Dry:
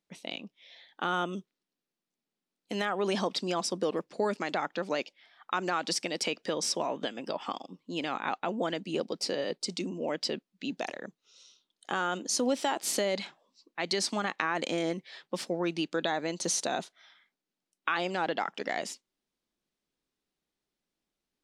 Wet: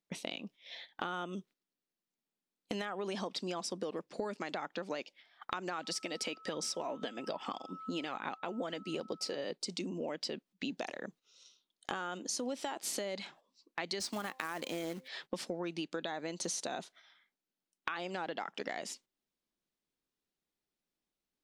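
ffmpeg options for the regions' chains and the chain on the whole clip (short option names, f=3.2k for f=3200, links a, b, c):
-filter_complex "[0:a]asettb=1/sr,asplit=3[a][b][c];[a]atrim=end=5.784[d];[b]atrim=start=5.78:end=9.36,asetpts=PTS-STARTPTS,afade=t=in:d=0.004:c=qsin,afade=t=out:st=3.576:d=0.004:c=qsin,aphaser=in_gain=1:out_gain=1:delay=4.7:decay=0.33:speed=1.2:type=triangular,aeval=exprs='val(0)+0.00316*sin(2*PI*1300*n/s)':c=same[e];[c]atrim=start=9.356[f];[d][e]acrossfade=d=0.004:c1=hsin:c2=qsin[g];[g][f]acrossfade=d=0.004:c1=qsin:c2=hsin,asettb=1/sr,asplit=3[h][i][j];[h]atrim=end=14.004[k];[i]atrim=start=14:end=15.08,asetpts=PTS-STARTPTS,afade=t=in:d=0.004:c=qsin,afade=t=out:st=1.076:d=0.004:c=qsin,highpass=f=44:w=0.5412,highpass=f=44:w=1.3066,bandreject=f=260.1:t=h:w=4,bandreject=f=520.2:t=h:w=4,bandreject=f=780.3:t=h:w=4,bandreject=f=1.0404k:t=h:w=4,acrusher=bits=3:mode=log:mix=0:aa=0.000001[l];[j]atrim=start=15.076[m];[k][l]acrossfade=d=0.004:c1=hsin:c2=qsin[n];[n][m]acrossfade=d=0.004:c1=qsin:c2=hsin,agate=range=-12dB:threshold=-54dB:ratio=16:detection=peak,acompressor=threshold=-44dB:ratio=5,volume=7dB"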